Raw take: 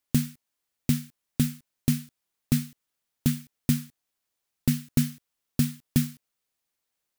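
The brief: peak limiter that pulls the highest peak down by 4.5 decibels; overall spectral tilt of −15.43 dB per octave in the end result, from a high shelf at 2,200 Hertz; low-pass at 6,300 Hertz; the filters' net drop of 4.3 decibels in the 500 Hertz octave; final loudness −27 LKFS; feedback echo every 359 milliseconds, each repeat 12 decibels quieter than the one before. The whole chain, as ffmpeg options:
ffmpeg -i in.wav -af "lowpass=6300,equalizer=frequency=500:width_type=o:gain=-6,highshelf=frequency=2200:gain=-6,alimiter=limit=-15dB:level=0:latency=1,aecho=1:1:359|718|1077:0.251|0.0628|0.0157,volume=6.5dB" out.wav

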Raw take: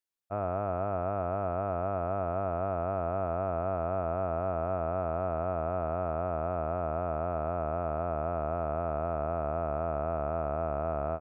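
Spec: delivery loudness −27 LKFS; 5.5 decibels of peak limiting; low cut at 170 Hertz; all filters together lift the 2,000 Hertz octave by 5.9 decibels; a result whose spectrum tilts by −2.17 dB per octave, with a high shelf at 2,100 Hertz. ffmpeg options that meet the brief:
ffmpeg -i in.wav -af "highpass=170,equalizer=frequency=2000:width_type=o:gain=6.5,highshelf=frequency=2100:gain=4.5,volume=9dB,alimiter=limit=-15dB:level=0:latency=1" out.wav

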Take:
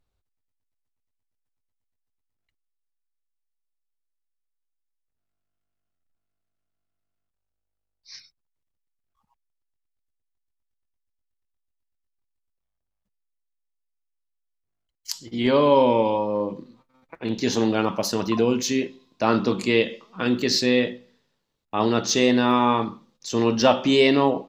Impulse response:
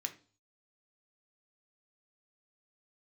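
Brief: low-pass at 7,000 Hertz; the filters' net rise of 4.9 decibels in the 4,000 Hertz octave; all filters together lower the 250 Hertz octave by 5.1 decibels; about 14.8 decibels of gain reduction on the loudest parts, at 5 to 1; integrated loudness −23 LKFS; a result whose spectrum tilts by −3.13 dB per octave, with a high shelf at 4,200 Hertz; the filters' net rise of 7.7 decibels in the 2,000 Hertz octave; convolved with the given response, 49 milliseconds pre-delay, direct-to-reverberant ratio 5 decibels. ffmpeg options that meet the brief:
-filter_complex "[0:a]lowpass=7000,equalizer=frequency=250:width_type=o:gain=-6,equalizer=frequency=2000:width_type=o:gain=9,equalizer=frequency=4000:width_type=o:gain=6,highshelf=frequency=4200:gain=-4.5,acompressor=threshold=-29dB:ratio=5,asplit=2[link_01][link_02];[1:a]atrim=start_sample=2205,adelay=49[link_03];[link_02][link_03]afir=irnorm=-1:irlink=0,volume=-4.5dB[link_04];[link_01][link_04]amix=inputs=2:normalize=0,volume=8.5dB"

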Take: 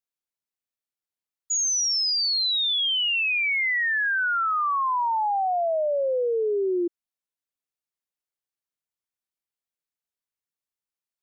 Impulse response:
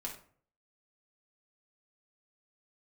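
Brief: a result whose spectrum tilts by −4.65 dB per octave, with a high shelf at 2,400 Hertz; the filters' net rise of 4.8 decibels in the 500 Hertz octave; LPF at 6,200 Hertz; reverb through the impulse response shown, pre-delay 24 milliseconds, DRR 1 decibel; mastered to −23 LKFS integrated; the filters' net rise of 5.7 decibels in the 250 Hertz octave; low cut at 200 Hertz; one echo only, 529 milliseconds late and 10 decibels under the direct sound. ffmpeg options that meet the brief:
-filter_complex "[0:a]highpass=200,lowpass=6200,equalizer=frequency=250:width_type=o:gain=8.5,equalizer=frequency=500:width_type=o:gain=4,highshelf=frequency=2400:gain=-5.5,aecho=1:1:529:0.316,asplit=2[link_01][link_02];[1:a]atrim=start_sample=2205,adelay=24[link_03];[link_02][link_03]afir=irnorm=-1:irlink=0,volume=-0.5dB[link_04];[link_01][link_04]amix=inputs=2:normalize=0,volume=-2.5dB"

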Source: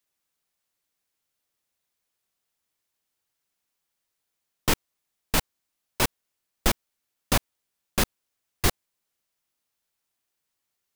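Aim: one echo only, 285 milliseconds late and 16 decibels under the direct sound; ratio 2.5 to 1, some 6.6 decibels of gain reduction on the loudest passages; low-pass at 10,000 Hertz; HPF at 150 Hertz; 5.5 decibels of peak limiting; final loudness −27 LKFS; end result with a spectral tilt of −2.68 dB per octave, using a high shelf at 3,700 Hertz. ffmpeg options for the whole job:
ffmpeg -i in.wav -af "highpass=150,lowpass=10000,highshelf=frequency=3700:gain=5,acompressor=threshold=-28dB:ratio=2.5,alimiter=limit=-17.5dB:level=0:latency=1,aecho=1:1:285:0.158,volume=8dB" out.wav

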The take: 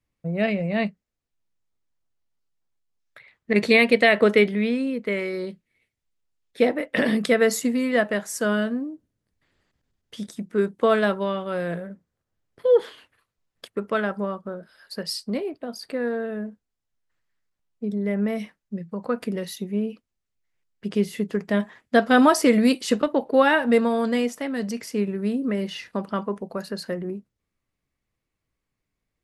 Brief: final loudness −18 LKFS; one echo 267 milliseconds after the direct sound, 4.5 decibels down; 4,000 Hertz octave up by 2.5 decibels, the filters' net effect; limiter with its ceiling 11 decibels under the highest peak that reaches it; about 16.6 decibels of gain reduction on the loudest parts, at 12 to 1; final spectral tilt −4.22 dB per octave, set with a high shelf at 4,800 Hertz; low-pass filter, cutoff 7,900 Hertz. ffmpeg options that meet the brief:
ffmpeg -i in.wav -af "lowpass=7900,equalizer=frequency=4000:width_type=o:gain=7,highshelf=frequency=4800:gain=-7.5,acompressor=threshold=-29dB:ratio=12,alimiter=level_in=1.5dB:limit=-24dB:level=0:latency=1,volume=-1.5dB,aecho=1:1:267:0.596,volume=17dB" out.wav

